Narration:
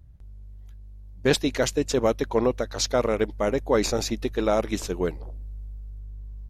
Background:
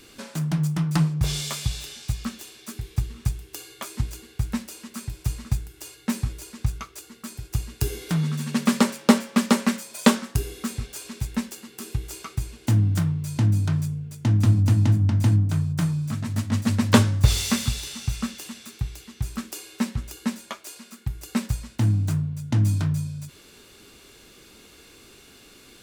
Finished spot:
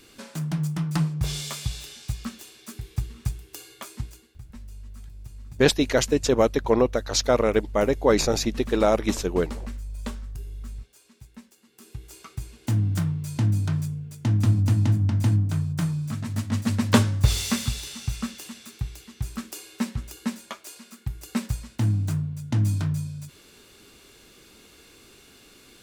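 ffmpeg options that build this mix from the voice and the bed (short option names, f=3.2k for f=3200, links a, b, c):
-filter_complex "[0:a]adelay=4350,volume=2.5dB[a];[1:a]volume=14dB,afade=t=out:st=3.74:d=0.67:silence=0.158489,afade=t=in:st=11.57:d=1.46:silence=0.141254[b];[a][b]amix=inputs=2:normalize=0"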